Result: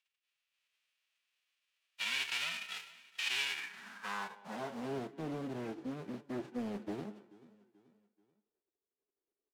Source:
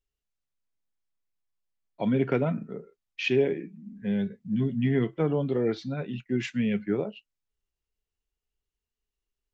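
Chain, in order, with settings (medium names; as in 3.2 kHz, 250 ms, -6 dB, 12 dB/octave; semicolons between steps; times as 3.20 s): formants flattened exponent 0.1; band-stop 2.1 kHz, Q 21; in parallel at +2 dB: compression, threshold -34 dBFS, peak gain reduction 15.5 dB; on the sum: speakerphone echo 210 ms, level -21 dB; saturation -22 dBFS, distortion -10 dB; on a send: feedback delay 434 ms, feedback 42%, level -20.5 dB; on the sum: band-pass sweep 2.6 kHz -> 330 Hz, 3.47–5.12 s; loudspeaker Doppler distortion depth 0.61 ms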